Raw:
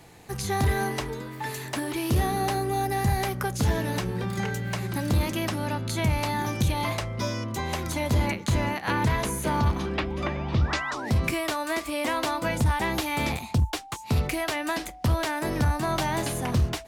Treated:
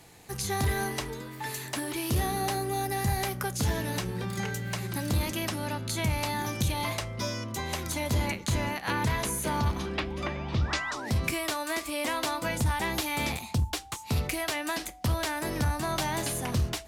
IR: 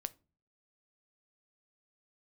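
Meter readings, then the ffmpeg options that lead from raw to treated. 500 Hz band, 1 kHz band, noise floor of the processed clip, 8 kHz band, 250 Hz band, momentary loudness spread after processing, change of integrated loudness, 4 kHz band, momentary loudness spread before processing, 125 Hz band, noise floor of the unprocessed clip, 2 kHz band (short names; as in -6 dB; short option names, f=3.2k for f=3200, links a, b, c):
-4.0 dB, -4.0 dB, -43 dBFS, +1.5 dB, -4.5 dB, 5 LU, -3.0 dB, -0.5 dB, 5 LU, -4.0 dB, -41 dBFS, -2.0 dB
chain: -filter_complex "[0:a]asplit=2[a][b];[b]equalizer=f=15k:t=o:w=2.9:g=13[c];[1:a]atrim=start_sample=2205,asetrate=29988,aresample=44100[d];[c][d]afir=irnorm=-1:irlink=0,volume=-7dB[e];[a][e]amix=inputs=2:normalize=0,volume=-7.5dB"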